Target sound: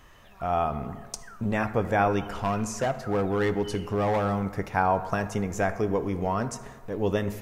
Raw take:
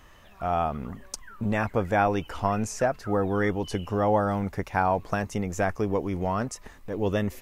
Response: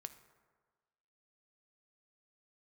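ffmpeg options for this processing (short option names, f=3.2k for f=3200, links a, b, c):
-filter_complex "[0:a]asettb=1/sr,asplit=3[a][b][c];[a]atrim=end=2.334[d];[b]atrim=start=2.33:end=4.44,asetpts=PTS-STARTPTS,afade=t=in:d=0.004:c=qsin,afade=t=out:st=2.106:d=0.004:c=qsin,asoftclip=type=hard:threshold=-21dB[e];[c]atrim=start=4.436[f];[d][e]acrossfade=d=0.004:c1=hsin:c2=qsin[g];[g][f]acrossfade=d=0.004:c1=qsin:c2=hsin[h];[1:a]atrim=start_sample=2205[i];[h][i]afir=irnorm=-1:irlink=0,volume=5dB"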